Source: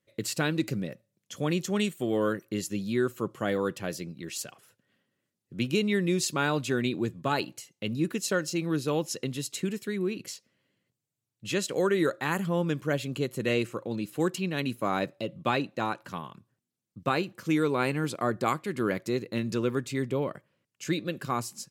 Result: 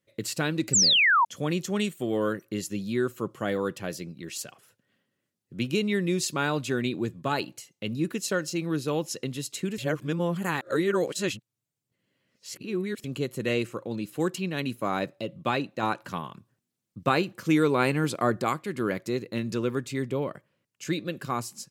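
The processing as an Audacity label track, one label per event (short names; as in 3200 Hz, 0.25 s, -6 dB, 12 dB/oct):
0.730000	1.250000	painted sound fall 880–8100 Hz -20 dBFS
9.780000	13.040000	reverse
15.830000	18.420000	gain +3.5 dB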